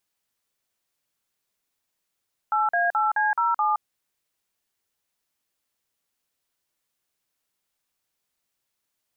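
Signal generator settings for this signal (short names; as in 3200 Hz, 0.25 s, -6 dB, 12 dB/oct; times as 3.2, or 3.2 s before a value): DTMF "8A8C07", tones 0.169 s, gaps 45 ms, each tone -22 dBFS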